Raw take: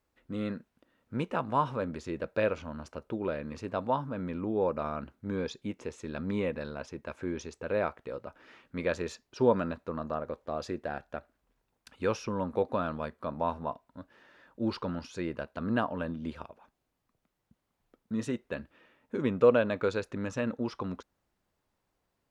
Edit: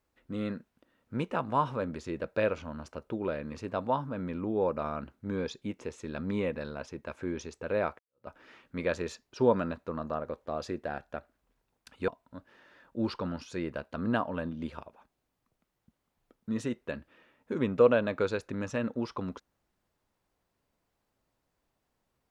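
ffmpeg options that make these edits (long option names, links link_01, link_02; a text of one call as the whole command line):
ffmpeg -i in.wav -filter_complex "[0:a]asplit=3[link_01][link_02][link_03];[link_01]atrim=end=7.99,asetpts=PTS-STARTPTS,afade=type=out:start_time=7.986:duration=0.004:curve=hsin[link_04];[link_02]atrim=start=7.99:end=12.082,asetpts=PTS-STARTPTS,afade=type=in:duration=0.28:curve=exp[link_05];[link_03]atrim=start=13.708[link_06];[link_04][link_05]concat=n=2:v=0:a=1[link_07];[link_07][link_06]acrossfade=duration=0.004:curve1=hsin:curve2=hsin" out.wav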